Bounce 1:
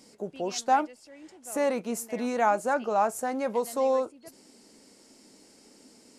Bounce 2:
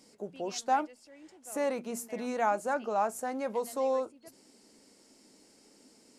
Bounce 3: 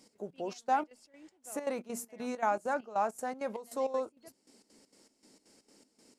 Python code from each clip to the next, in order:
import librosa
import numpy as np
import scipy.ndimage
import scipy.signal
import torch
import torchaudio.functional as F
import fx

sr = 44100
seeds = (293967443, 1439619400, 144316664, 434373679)

y1 = fx.hum_notches(x, sr, base_hz=60, count=4)
y1 = y1 * 10.0 ** (-4.5 / 20.0)
y2 = fx.step_gate(y1, sr, bpm=198, pattern='x.xx.xx..x', floor_db=-12.0, edge_ms=4.5)
y2 = y2 * 10.0 ** (-1.5 / 20.0)